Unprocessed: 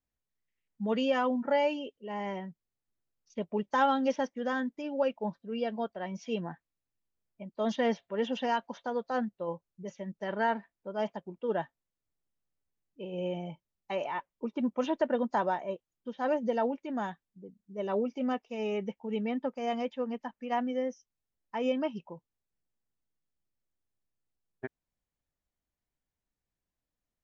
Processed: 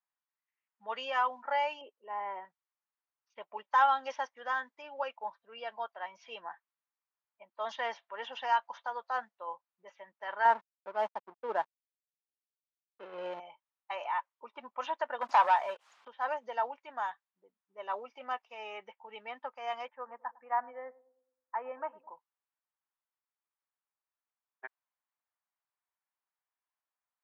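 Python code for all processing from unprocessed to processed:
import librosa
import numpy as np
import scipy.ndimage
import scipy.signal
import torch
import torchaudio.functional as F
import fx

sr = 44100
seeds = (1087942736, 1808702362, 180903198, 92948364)

y = fx.chain(x, sr, fx.lowpass(hz=1700.0, slope=12),
    fx.peak_eq(hz=320.0, db=7.0, octaves=1.1), at=(1.81, 2.45))
y = fx.chain(y, sr, fx.backlash(play_db=-39.5),
    fx.peak_eq(hz=220.0, db=13.0, octaves=2.9), at=(10.45, 13.4))
y = fx.chain(y, sr, fx.peak_eq(hz=330.0, db=-10.0, octaves=0.35),
    fx.leveller(passes=2),
    fx.pre_swell(db_per_s=110.0), at=(15.21, 16.08))
y = fx.chain(y, sr, fx.steep_lowpass(hz=1900.0, slope=36),
    fx.echo_banded(ms=105, feedback_pct=52, hz=330.0, wet_db=-17), at=(19.88, 22.11))
y = scipy.signal.sosfilt(scipy.signal.cheby1(3, 1.0, 970.0, 'highpass', fs=sr, output='sos'), y)
y = fx.env_lowpass(y, sr, base_hz=2700.0, full_db=-35.0)
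y = fx.tilt_eq(y, sr, slope=-4.0)
y = F.gain(torch.from_numpy(y), 5.0).numpy()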